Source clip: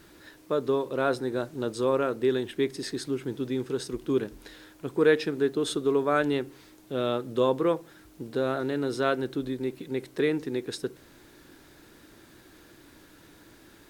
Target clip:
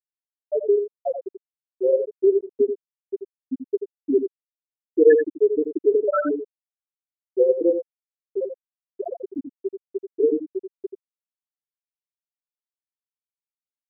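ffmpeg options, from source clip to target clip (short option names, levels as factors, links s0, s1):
-af "afftfilt=real='re*gte(hypot(re,im),0.501)':imag='im*gte(hypot(re,im),0.501)':win_size=1024:overlap=0.75,aecho=1:1:85:0.398,volume=2.66"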